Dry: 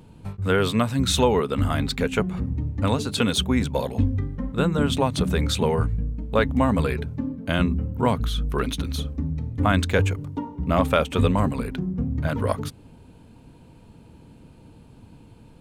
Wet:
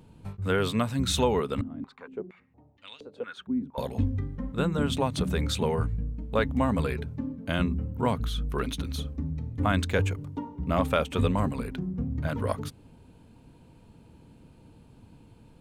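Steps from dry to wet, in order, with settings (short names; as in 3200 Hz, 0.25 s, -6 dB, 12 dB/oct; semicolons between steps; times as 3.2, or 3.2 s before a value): 1.61–3.78 stepped band-pass 4.3 Hz 250–3100 Hz; gain -5 dB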